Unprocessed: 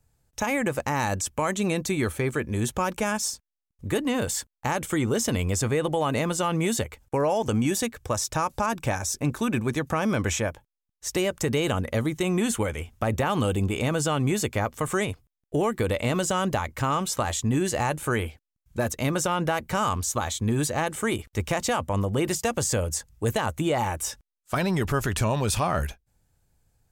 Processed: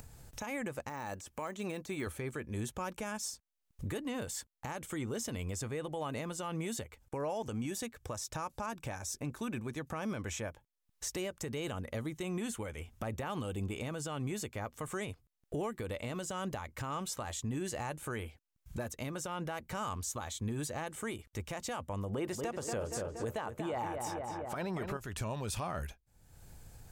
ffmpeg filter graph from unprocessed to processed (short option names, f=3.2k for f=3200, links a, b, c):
-filter_complex "[0:a]asettb=1/sr,asplit=3[a][b][c];[a]atrim=end=0.894[d];[b]atrim=start=0.89:end=2.07,asetpts=PTS-STARTPTS,afade=t=in:d=0.004:c=qsin,afade=t=out:st=1.176:d=0.004:c=qsin,deesser=0.85,lowshelf=f=210:g=-10[e];[c]atrim=start=2.066[f];[d][e]acrossfade=d=0.004:c1=hsin:c2=qsin[g];[g][f]acrossfade=d=0.004:c1=qsin:c2=hsin,asettb=1/sr,asplit=3[h][i][j];[h]atrim=end=22.094[k];[i]atrim=start=22.09:end=24.97,asetpts=PTS-STARTPTS,afade=t=in:d=0.004:c=qsin,afade=t=out:st=2.876:d=0.004:c=qsin,equalizer=f=700:w=0.3:g=9.5,asplit=2[l][m];[m]adelay=235,lowpass=f=2.6k:p=1,volume=-7dB,asplit=2[n][o];[o]adelay=235,lowpass=f=2.6k:p=1,volume=0.51,asplit=2[p][q];[q]adelay=235,lowpass=f=2.6k:p=1,volume=0.51,asplit=2[r][s];[s]adelay=235,lowpass=f=2.6k:p=1,volume=0.51,asplit=2[t][u];[u]adelay=235,lowpass=f=2.6k:p=1,volume=0.51,asplit=2[v][w];[w]adelay=235,lowpass=f=2.6k:p=1,volume=0.51[x];[l][n][p][r][t][v][x]amix=inputs=7:normalize=0,atrim=end_sample=127008[y];[j]atrim=start=24.966[z];[k][y]acrossfade=d=0.004:c1=hsin:c2=qsin[aa];[aa][z]acrossfade=d=0.004:c1=qsin:c2=hsin,acompressor=mode=upward:threshold=-27dB:ratio=2.5,alimiter=limit=-21dB:level=0:latency=1:release=491,volume=-7dB"